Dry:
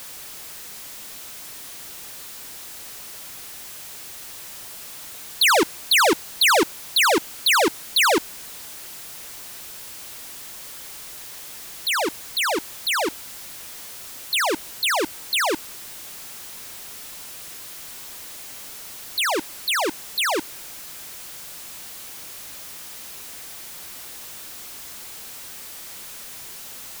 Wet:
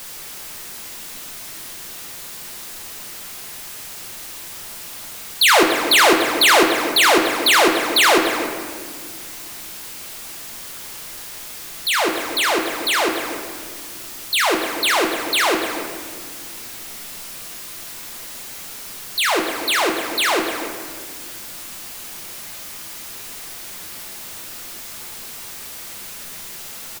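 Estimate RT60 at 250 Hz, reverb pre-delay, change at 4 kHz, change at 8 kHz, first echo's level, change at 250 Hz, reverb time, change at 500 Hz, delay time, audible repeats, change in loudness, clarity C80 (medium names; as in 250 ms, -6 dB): 2.7 s, 5 ms, +4.0 dB, +3.5 dB, -13.0 dB, +6.5 dB, 1.8 s, +5.0 dB, 288 ms, 1, +8.5 dB, 5.0 dB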